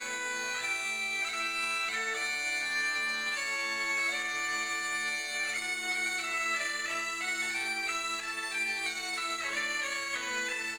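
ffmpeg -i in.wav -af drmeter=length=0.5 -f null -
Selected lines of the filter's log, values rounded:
Channel 1: DR: 10.1
Overall DR: 10.1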